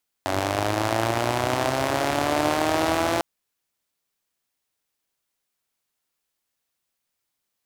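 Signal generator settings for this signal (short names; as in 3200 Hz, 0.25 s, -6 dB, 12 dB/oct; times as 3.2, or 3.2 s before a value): four-cylinder engine model, changing speed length 2.95 s, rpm 2800, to 5100, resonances 110/320/620 Hz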